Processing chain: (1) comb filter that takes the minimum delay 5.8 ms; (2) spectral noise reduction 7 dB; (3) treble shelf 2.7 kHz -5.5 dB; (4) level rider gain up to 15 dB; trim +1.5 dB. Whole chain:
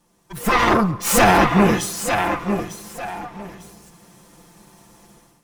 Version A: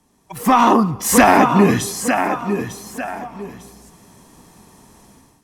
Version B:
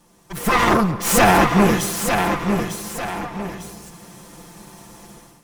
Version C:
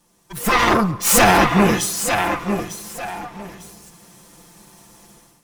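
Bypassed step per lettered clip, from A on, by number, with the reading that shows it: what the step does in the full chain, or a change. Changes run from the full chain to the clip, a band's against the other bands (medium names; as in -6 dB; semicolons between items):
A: 1, 4 kHz band -4.0 dB; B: 2, momentary loudness spread change -2 LU; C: 3, 8 kHz band +4.5 dB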